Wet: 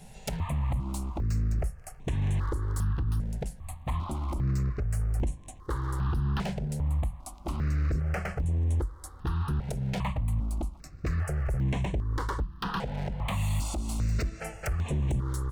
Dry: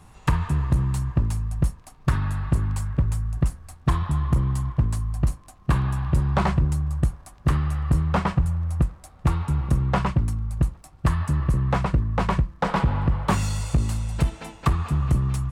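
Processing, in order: compression 12:1, threshold -26 dBFS, peak gain reduction 12.5 dB; wavefolder -26.5 dBFS; stepped phaser 2.5 Hz 310–4800 Hz; trim +4.5 dB

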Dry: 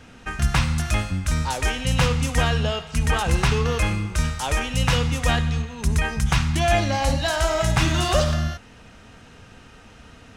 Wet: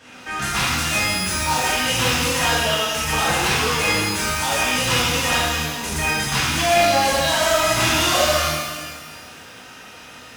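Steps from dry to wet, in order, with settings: high-pass 630 Hz 6 dB/octave; saturation -23 dBFS, distortion -11 dB; pitch-shifted reverb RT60 1.4 s, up +12 st, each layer -8 dB, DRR -9.5 dB

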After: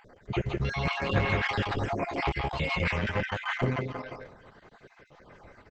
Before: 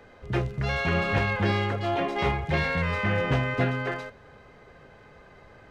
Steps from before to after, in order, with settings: random holes in the spectrogram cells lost 52%; delay 166 ms -4 dB; Opus 10 kbps 48 kHz

